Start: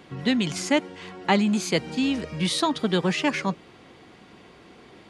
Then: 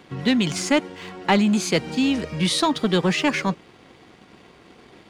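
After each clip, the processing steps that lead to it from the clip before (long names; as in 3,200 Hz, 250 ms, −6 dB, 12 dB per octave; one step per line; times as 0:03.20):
leveller curve on the samples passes 1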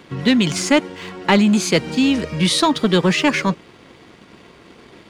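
notch filter 760 Hz, Q 12
level +4.5 dB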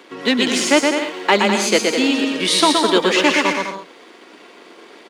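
high-pass filter 290 Hz 24 dB per octave
on a send: bouncing-ball delay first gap 120 ms, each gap 0.7×, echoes 5
on the sum: level +1.5 dB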